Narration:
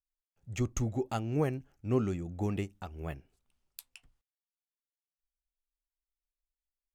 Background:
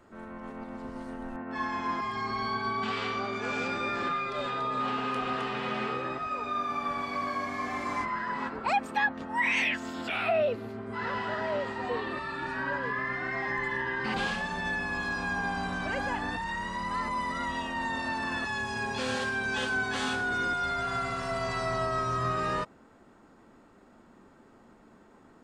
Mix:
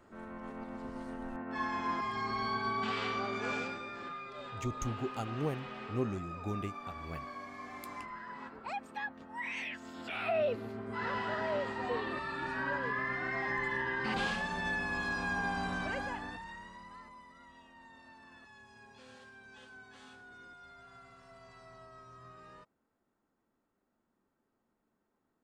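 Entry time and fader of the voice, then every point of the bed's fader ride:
4.05 s, -5.0 dB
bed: 3.53 s -3 dB
3.86 s -12.5 dB
9.69 s -12.5 dB
10.54 s -3 dB
15.80 s -3 dB
17.29 s -24 dB

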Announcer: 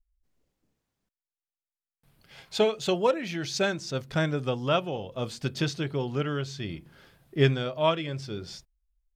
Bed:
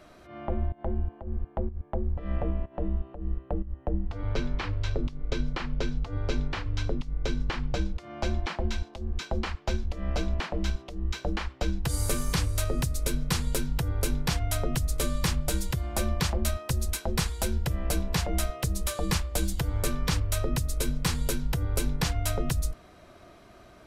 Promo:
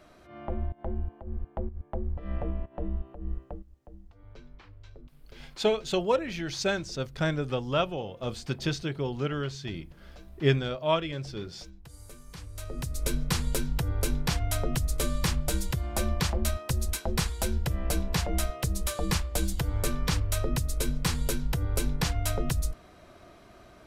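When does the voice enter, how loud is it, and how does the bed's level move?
3.05 s, -1.5 dB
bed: 3.42 s -3 dB
3.72 s -20.5 dB
12.24 s -20.5 dB
13.07 s -0.5 dB

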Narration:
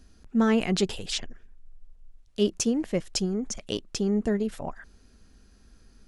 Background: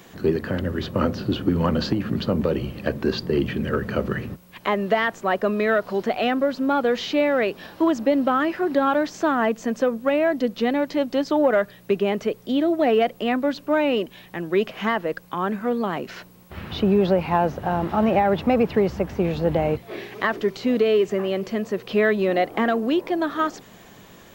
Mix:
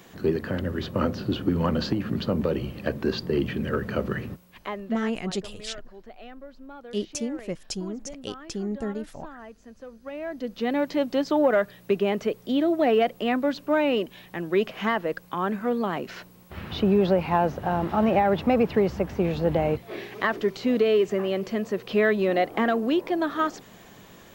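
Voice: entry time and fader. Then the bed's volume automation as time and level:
4.55 s, -5.0 dB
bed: 4.33 s -3 dB
5.30 s -22.5 dB
9.81 s -22.5 dB
10.79 s -2 dB

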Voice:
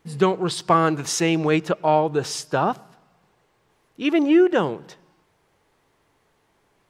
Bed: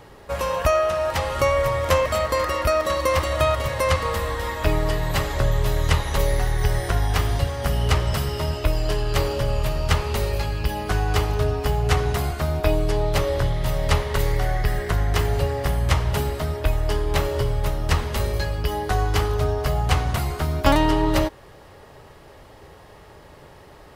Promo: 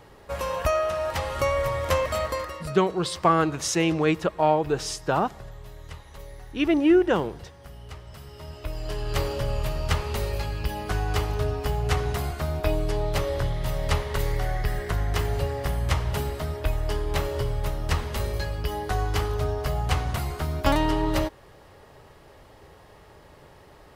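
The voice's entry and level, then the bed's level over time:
2.55 s, -2.5 dB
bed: 2.27 s -4.5 dB
2.83 s -21.5 dB
8.06 s -21.5 dB
9.16 s -4.5 dB

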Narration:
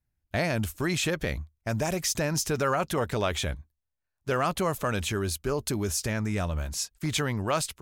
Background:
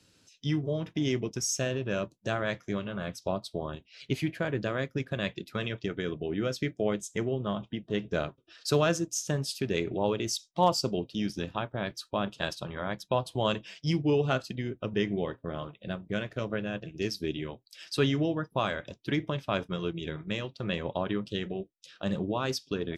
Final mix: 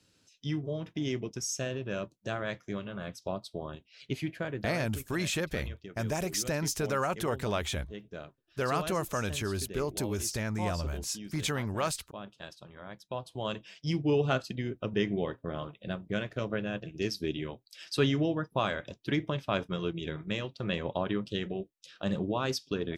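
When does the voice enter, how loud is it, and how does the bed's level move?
4.30 s, -4.0 dB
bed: 4.43 s -4 dB
5.07 s -13 dB
12.72 s -13 dB
14.20 s -0.5 dB

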